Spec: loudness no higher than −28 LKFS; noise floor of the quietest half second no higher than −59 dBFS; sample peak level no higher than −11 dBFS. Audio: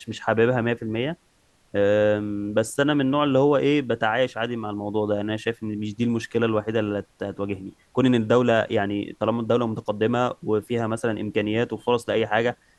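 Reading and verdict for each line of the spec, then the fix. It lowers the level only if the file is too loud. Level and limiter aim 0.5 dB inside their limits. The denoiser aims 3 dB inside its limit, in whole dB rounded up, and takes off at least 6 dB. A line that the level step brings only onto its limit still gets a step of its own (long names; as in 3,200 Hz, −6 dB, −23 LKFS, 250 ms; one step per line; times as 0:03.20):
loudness −23.5 LKFS: out of spec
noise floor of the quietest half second −62 dBFS: in spec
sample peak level −6.0 dBFS: out of spec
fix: level −5 dB
brickwall limiter −11.5 dBFS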